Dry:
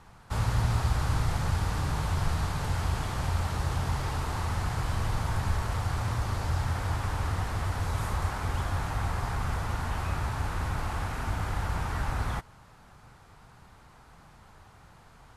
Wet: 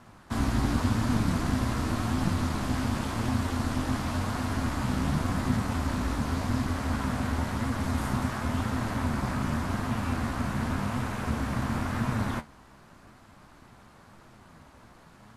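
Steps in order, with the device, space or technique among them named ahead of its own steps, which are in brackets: alien voice (ring modulator 170 Hz; flange 0.91 Hz, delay 7.8 ms, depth 8.9 ms, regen +56%); peaking EQ 290 Hz -5 dB 0.23 oct; trim +8 dB

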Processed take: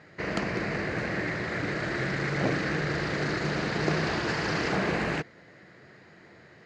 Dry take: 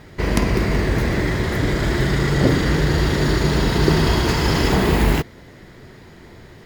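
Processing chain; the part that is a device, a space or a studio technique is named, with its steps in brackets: full-range speaker at full volume (loudspeaker Doppler distortion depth 0.56 ms; cabinet simulation 190–6200 Hz, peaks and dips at 250 Hz -8 dB, 390 Hz -6 dB, 940 Hz -6 dB, 1.7 kHz +3 dB, 3.4 kHz -9 dB, 5.5 kHz -6 dB); trim -5.5 dB

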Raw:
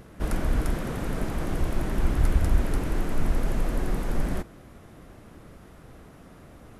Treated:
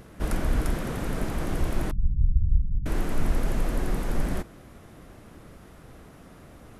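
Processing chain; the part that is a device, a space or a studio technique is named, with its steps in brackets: exciter from parts (in parallel at -11 dB: high-pass 2.7 kHz 6 dB/octave + saturation -36.5 dBFS, distortion -16 dB); 1.91–2.86 s: on the sum: inverse Chebyshev low-pass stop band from 890 Hz, stop band 80 dB

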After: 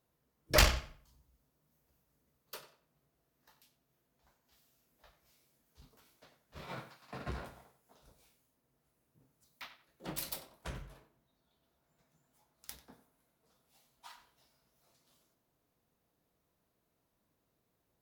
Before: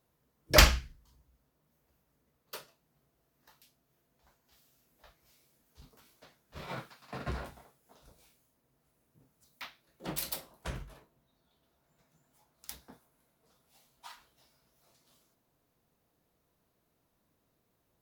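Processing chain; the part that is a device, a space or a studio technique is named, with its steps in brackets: 0.76–2.54 s: tone controls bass +2 dB, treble +4 dB; rockabilly slapback (valve stage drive 17 dB, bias 0.7; tape echo 91 ms, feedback 31%, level -11.5 dB, low-pass 3.6 kHz)

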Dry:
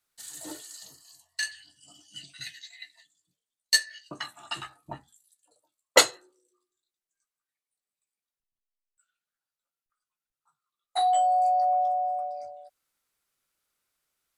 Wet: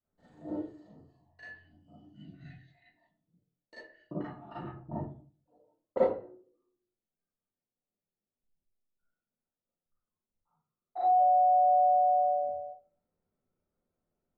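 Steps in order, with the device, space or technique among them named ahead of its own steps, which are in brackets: television next door (compression 6:1, threshold -25 dBFS, peak gain reduction 13 dB; low-pass 470 Hz 12 dB/octave; reverberation RT60 0.40 s, pre-delay 33 ms, DRR -9 dB)

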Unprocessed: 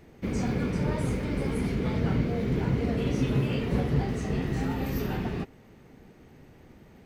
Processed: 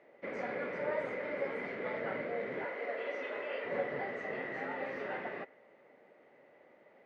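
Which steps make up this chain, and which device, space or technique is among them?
2.65–3.65 s: high-pass 440 Hz 12 dB/octave; dynamic bell 1.7 kHz, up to +6 dB, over -56 dBFS, Q 1.8; tin-can telephone (band-pass 500–2200 Hz; small resonant body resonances 570/2000 Hz, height 12 dB, ringing for 30 ms); trim -5 dB

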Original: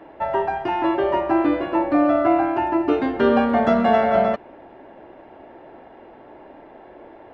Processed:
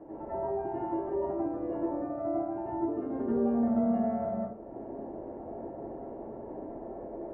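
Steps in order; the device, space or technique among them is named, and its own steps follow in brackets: television next door (compression 3:1, threshold -37 dBFS, peak gain reduction 17.5 dB; low-pass 560 Hz 12 dB/octave; reverberation RT60 0.60 s, pre-delay 81 ms, DRR -7.5 dB); trim -2.5 dB

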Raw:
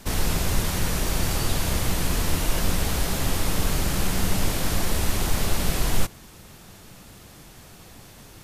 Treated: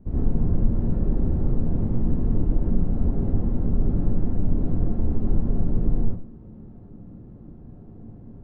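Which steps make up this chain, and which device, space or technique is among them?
television next door (compression 3:1, threshold -21 dBFS, peak gain reduction 6.5 dB; low-pass 280 Hz 12 dB/octave; reverberation RT60 0.45 s, pre-delay 69 ms, DRR -7.5 dB); 2.32–3.45 s: low-pass 6 kHz

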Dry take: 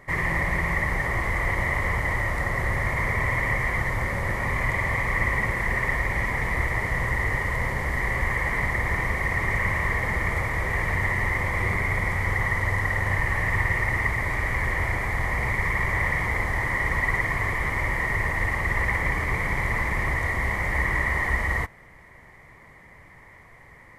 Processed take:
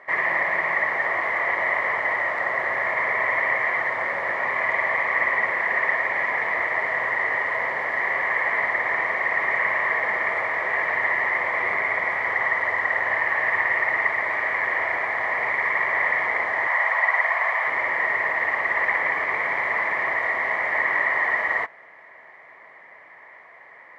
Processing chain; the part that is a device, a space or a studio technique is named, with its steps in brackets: 16.67–17.67 s: resonant low shelf 460 Hz -12.5 dB, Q 1.5; tin-can telephone (band-pass 560–2700 Hz; small resonant body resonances 650/1700 Hz, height 7 dB); trim +4.5 dB

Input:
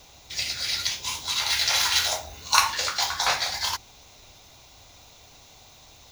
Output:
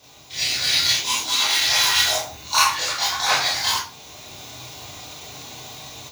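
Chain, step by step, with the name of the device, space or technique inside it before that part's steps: 0.93–1.60 s: resonant low shelf 190 Hz -7 dB, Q 1.5; far laptop microphone (reverberation RT60 0.35 s, pre-delay 22 ms, DRR -6.5 dB; high-pass 110 Hz 12 dB/octave; level rider gain up to 10 dB); trim -3.5 dB

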